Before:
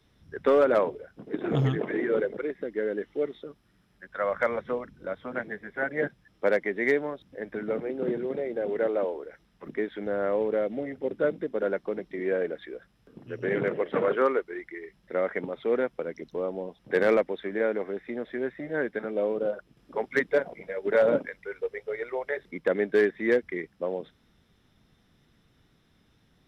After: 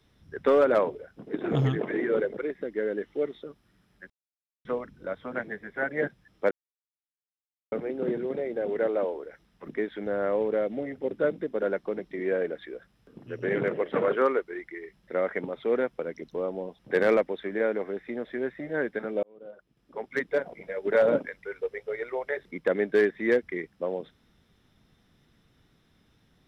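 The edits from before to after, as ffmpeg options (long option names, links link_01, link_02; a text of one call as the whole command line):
ffmpeg -i in.wav -filter_complex "[0:a]asplit=6[link_01][link_02][link_03][link_04][link_05][link_06];[link_01]atrim=end=4.1,asetpts=PTS-STARTPTS,afade=type=out:start_time=4.096:duration=0.004:curve=hsin[link_07];[link_02]atrim=start=4.1:end=4.65,asetpts=PTS-STARTPTS,volume=0[link_08];[link_03]atrim=start=4.65:end=6.51,asetpts=PTS-STARTPTS,afade=type=in:duration=0.004:curve=hsin,afade=type=out:start_time=1.856:duration=0.004:curve=hsin[link_09];[link_04]atrim=start=6.51:end=7.72,asetpts=PTS-STARTPTS,volume=0[link_10];[link_05]atrim=start=7.72:end=19.23,asetpts=PTS-STARTPTS,afade=type=in:duration=0.004:curve=hsin,afade=type=out:start_time=11.506:duration=0.004:curve=hsin[link_11];[link_06]atrim=start=19.23,asetpts=PTS-STARTPTS,afade=type=in:duration=1.52[link_12];[link_07][link_08][link_09][link_10][link_11][link_12]concat=n=6:v=0:a=1" out.wav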